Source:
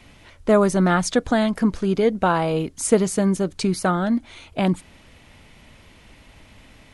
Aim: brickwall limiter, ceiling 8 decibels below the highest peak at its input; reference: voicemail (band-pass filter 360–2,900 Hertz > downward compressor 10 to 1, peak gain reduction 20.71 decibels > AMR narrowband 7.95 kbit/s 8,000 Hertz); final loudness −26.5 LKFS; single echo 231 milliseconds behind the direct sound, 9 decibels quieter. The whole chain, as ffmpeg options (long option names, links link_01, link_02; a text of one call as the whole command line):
ffmpeg -i in.wav -af "alimiter=limit=-11.5dB:level=0:latency=1,highpass=360,lowpass=2900,aecho=1:1:231:0.355,acompressor=threshold=-38dB:ratio=10,volume=17dB" -ar 8000 -c:a libopencore_amrnb -b:a 7950 out.amr